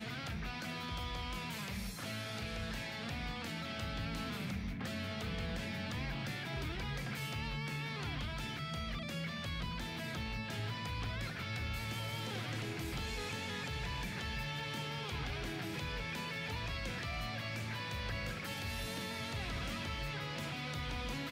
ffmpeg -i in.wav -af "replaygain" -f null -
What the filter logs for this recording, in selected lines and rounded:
track_gain = +24.0 dB
track_peak = 0.023